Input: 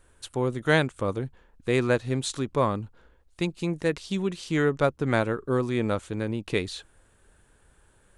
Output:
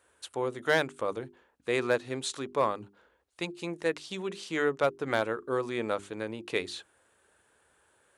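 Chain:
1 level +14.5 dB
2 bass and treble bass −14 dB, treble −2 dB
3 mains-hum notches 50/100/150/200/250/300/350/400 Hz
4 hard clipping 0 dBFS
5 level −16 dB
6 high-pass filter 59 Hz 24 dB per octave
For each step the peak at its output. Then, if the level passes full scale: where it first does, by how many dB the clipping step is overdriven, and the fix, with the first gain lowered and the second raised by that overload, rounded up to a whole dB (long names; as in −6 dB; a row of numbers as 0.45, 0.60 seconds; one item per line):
+7.0, +6.5, +7.0, 0.0, −16.0, −13.5 dBFS
step 1, 7.0 dB
step 1 +7.5 dB, step 5 −9 dB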